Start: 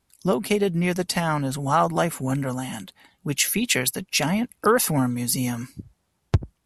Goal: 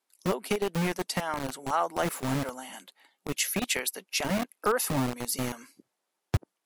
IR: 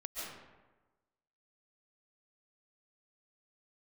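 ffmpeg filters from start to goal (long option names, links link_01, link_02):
-filter_complex "[0:a]asettb=1/sr,asplit=3[link_01][link_02][link_03];[link_01]atrim=end=1.994[link_04];[link_02]atrim=start=1.99:end=2.5,asetpts=PTS-STARTPTS,afade=type=in:duration=0.004:curve=qsin,afade=type=out:start_time=0.506:duration=0.004:curve=qsin,aeval=exprs='val(0)+0.5*0.0266*sgn(val(0))':channel_layout=same[link_05];[link_03]atrim=start=2.496[link_06];[link_04][link_05]acrossfade=duration=0.004:curve1=hsin:curve2=qsin[link_07];[link_07][link_06]acrossfade=duration=0.004:curve1=qsin:curve2=hsin,acrossover=split=300|5200[link_08][link_09][link_10];[link_08]acrusher=bits=3:mix=0:aa=0.000001[link_11];[link_11][link_09][link_10]amix=inputs=3:normalize=0,volume=-7dB"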